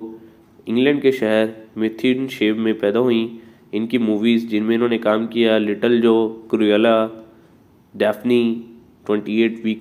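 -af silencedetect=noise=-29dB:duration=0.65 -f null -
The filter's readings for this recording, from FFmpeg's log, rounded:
silence_start: 7.20
silence_end: 7.96 | silence_duration: 0.76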